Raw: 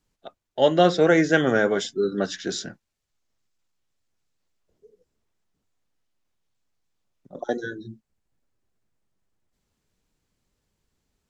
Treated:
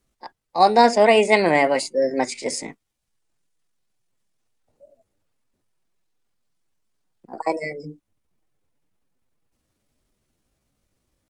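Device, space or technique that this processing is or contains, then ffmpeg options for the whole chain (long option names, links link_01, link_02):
chipmunk voice: -af "asetrate=58866,aresample=44100,atempo=0.749154,volume=3dB"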